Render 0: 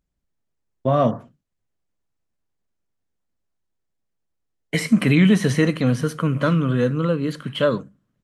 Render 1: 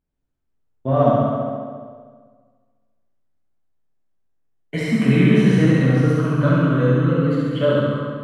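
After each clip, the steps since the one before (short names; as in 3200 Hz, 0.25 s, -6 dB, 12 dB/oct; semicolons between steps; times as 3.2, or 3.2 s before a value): high shelf 3800 Hz -12 dB; on a send: flutter echo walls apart 11.8 m, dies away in 1.3 s; on the sum: plate-style reverb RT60 1.6 s, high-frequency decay 0.65×, DRR -3.5 dB; gain -5 dB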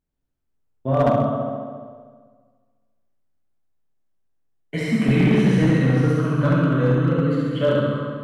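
overloaded stage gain 9.5 dB; gain -1.5 dB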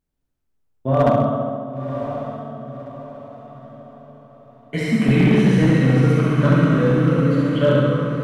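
diffused feedback echo 1.033 s, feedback 41%, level -9 dB; gain +2 dB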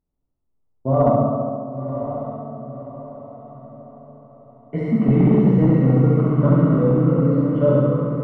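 polynomial smoothing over 65 samples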